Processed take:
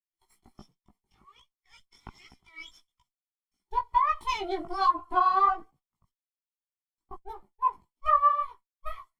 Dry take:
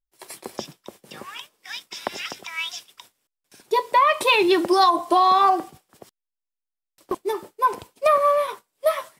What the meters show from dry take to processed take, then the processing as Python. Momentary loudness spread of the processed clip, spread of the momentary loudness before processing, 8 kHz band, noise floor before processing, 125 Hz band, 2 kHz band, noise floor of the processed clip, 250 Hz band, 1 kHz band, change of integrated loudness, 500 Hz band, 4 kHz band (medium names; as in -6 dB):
22 LU, 20 LU, under -15 dB, under -85 dBFS, no reading, -13.0 dB, under -85 dBFS, -16.5 dB, -6.0 dB, -6.0 dB, -18.0 dB, -16.5 dB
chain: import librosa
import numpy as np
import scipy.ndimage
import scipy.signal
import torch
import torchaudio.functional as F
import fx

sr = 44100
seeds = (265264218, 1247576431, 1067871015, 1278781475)

y = fx.lower_of_two(x, sr, delay_ms=0.93)
y = fx.chorus_voices(y, sr, voices=2, hz=1.3, base_ms=18, depth_ms=3.0, mix_pct=45)
y = fx.spectral_expand(y, sr, expansion=1.5)
y = y * librosa.db_to_amplitude(-2.5)